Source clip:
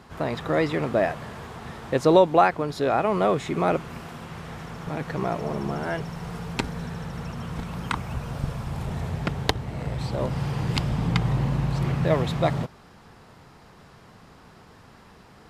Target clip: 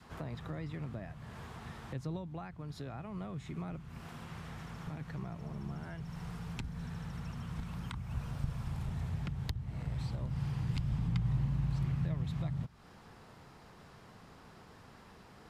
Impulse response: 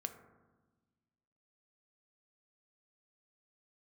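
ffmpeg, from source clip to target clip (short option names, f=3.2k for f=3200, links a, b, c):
-filter_complex "[0:a]acrossover=split=170[a][b];[b]acompressor=threshold=-40dB:ratio=4[c];[a][c]amix=inputs=2:normalize=0,adynamicequalizer=threshold=0.00316:dfrequency=490:dqfactor=1:tfrequency=490:tqfactor=1:attack=5:release=100:ratio=0.375:range=3.5:mode=cutabove:tftype=bell,volume=-5.5dB"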